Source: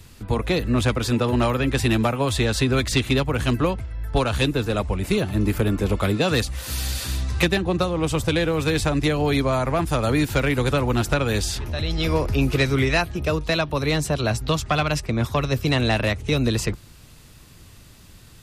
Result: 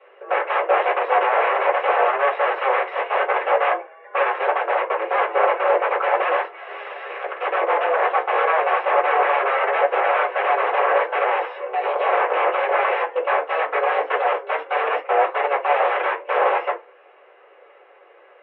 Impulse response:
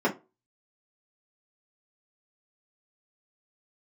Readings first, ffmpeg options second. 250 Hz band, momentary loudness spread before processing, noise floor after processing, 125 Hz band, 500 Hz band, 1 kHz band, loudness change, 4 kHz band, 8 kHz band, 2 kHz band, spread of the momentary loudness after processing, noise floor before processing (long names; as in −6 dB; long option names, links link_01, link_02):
−20.5 dB, 5 LU, −51 dBFS, below −40 dB, +4.0 dB, +11.0 dB, +2.0 dB, −9.0 dB, below −40 dB, +4.5 dB, 6 LU, −47 dBFS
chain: -filter_complex "[0:a]aeval=exprs='(mod(7.94*val(0)+1,2)-1)/7.94':channel_layout=same[link_01];[1:a]atrim=start_sample=2205[link_02];[link_01][link_02]afir=irnorm=-1:irlink=0,highpass=frequency=360:width_type=q:width=0.5412,highpass=frequency=360:width_type=q:width=1.307,lowpass=frequency=2600:width_type=q:width=0.5176,lowpass=frequency=2600:width_type=q:width=0.7071,lowpass=frequency=2600:width_type=q:width=1.932,afreqshift=150,volume=-7.5dB"